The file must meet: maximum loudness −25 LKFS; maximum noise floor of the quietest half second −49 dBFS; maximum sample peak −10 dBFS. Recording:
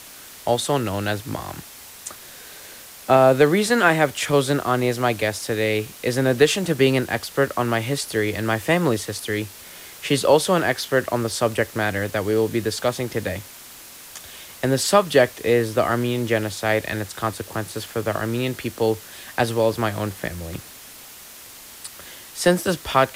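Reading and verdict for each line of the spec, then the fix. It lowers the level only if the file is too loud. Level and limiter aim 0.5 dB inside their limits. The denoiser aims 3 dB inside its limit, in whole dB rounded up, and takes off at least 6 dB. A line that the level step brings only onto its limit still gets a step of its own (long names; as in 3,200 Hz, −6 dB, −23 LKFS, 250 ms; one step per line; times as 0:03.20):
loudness −21.5 LKFS: out of spec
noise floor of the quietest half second −42 dBFS: out of spec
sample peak −3.5 dBFS: out of spec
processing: broadband denoise 6 dB, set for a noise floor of −42 dBFS
level −4 dB
brickwall limiter −10.5 dBFS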